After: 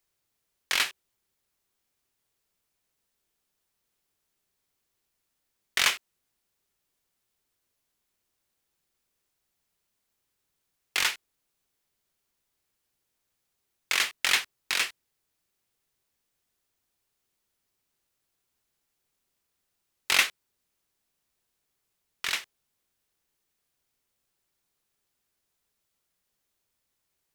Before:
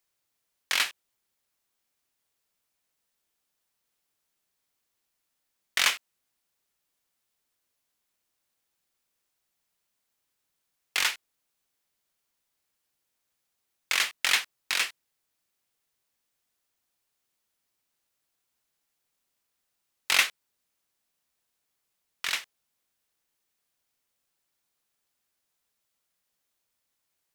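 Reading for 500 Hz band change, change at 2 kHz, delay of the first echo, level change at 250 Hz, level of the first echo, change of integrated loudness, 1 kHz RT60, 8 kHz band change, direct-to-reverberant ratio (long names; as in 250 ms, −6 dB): +1.5 dB, 0.0 dB, no echo audible, +3.5 dB, no echo audible, 0.0 dB, no reverb audible, 0.0 dB, no reverb audible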